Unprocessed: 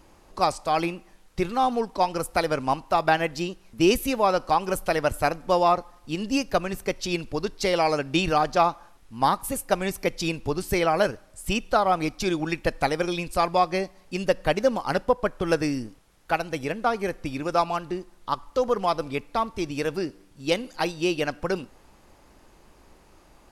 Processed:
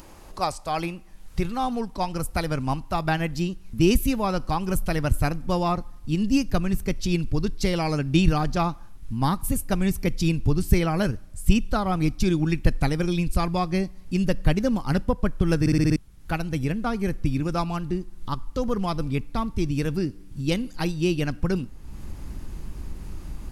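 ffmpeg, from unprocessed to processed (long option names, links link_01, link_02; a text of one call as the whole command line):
ffmpeg -i in.wav -filter_complex "[0:a]asplit=7[link_01][link_02][link_03][link_04][link_05][link_06][link_07];[link_01]atrim=end=15.662[link_08];[link_02]atrim=start=15.598:end=15.662[link_09];[link_03]atrim=start=15.598:end=15.662[link_10];[link_04]atrim=start=15.598:end=15.662[link_11];[link_05]atrim=start=15.598:end=15.662[link_12];[link_06]atrim=start=15.598:end=15.662[link_13];[link_07]atrim=start=15.958[link_14];[link_08][link_09]acrossfade=duration=0.004:curve1=hsin:curve2=hsin[link_15];[link_15][link_10]acrossfade=duration=0.004:curve1=hsin:curve2=hsin[link_16];[link_16][link_11]acrossfade=duration=0.004:curve1=hsin:curve2=hsin[link_17];[link_17][link_12]acrossfade=duration=0.004:curve1=hsin:curve2=hsin[link_18];[link_18][link_13]acrossfade=duration=0.004:curve1=hsin:curve2=hsin[link_19];[link_19][link_14]acrossfade=duration=0.004:curve1=hsin:curve2=hsin,highshelf=frequency=11000:gain=8.5,acompressor=mode=upward:threshold=-34dB:ratio=2.5,asubboost=boost=8:cutoff=200,volume=-3dB" out.wav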